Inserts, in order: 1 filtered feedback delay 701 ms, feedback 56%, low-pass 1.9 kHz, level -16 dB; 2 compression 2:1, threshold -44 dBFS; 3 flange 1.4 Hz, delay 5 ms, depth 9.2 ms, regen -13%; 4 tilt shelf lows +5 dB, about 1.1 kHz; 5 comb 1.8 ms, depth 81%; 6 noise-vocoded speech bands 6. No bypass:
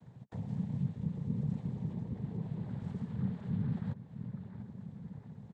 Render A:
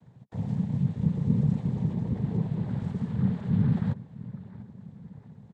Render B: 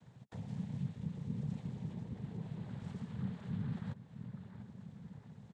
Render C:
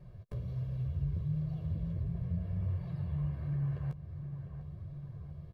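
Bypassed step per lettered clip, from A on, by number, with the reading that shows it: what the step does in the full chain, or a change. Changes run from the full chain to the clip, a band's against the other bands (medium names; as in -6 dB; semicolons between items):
2, mean gain reduction 6.5 dB; 4, 1 kHz band +3.0 dB; 6, 125 Hz band +5.0 dB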